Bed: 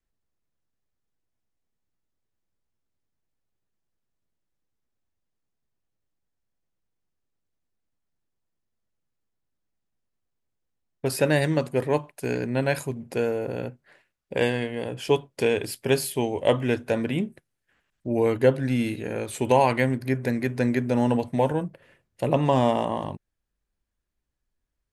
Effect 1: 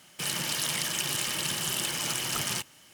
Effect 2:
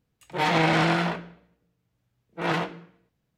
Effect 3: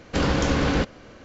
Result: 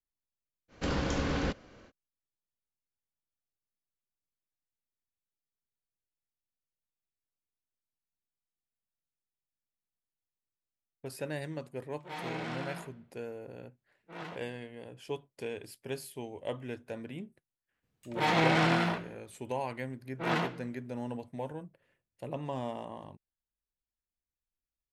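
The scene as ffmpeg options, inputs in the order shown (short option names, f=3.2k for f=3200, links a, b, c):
-filter_complex "[2:a]asplit=2[a][b];[0:a]volume=-16dB[c];[3:a]atrim=end=1.24,asetpts=PTS-STARTPTS,volume=-9.5dB,afade=t=in:d=0.05,afade=t=out:st=1.19:d=0.05,adelay=680[d];[a]atrim=end=3.37,asetpts=PTS-STARTPTS,volume=-17.5dB,afade=t=in:d=0.004:c=hsin,afade=t=out:st=3.366:d=0.004:c=hsin,adelay=11710[e];[b]atrim=end=3.37,asetpts=PTS-STARTPTS,volume=-4.5dB,afade=t=in:d=0.02,afade=t=out:st=3.35:d=0.02,adelay=17820[f];[c][d][e][f]amix=inputs=4:normalize=0"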